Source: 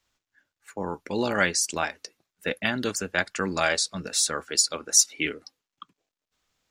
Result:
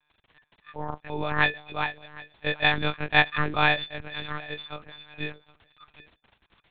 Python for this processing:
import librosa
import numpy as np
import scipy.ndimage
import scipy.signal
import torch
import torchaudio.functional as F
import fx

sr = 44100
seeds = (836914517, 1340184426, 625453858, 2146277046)

p1 = fx.freq_snap(x, sr, grid_st=6)
p2 = fx.rider(p1, sr, range_db=5, speed_s=0.5)
p3 = fx.dmg_crackle(p2, sr, seeds[0], per_s=29.0, level_db=-27.0)
p4 = p3 + fx.echo_feedback(p3, sr, ms=763, feedback_pct=19, wet_db=-21.0, dry=0)
p5 = fx.lpc_monotone(p4, sr, seeds[1], pitch_hz=150.0, order=8)
y = p5 * 10.0 ** (-5.5 / 20.0)